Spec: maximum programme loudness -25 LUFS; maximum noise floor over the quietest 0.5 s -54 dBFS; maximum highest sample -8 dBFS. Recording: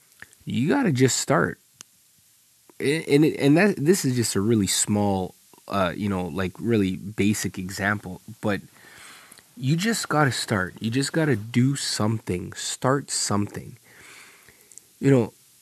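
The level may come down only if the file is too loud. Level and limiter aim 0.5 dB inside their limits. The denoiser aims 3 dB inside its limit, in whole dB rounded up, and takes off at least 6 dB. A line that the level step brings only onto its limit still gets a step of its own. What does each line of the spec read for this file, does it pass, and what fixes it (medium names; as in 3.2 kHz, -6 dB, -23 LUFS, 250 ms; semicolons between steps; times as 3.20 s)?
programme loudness -23.5 LUFS: fail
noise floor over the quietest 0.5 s -59 dBFS: pass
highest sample -4.5 dBFS: fail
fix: trim -2 dB; peak limiter -8.5 dBFS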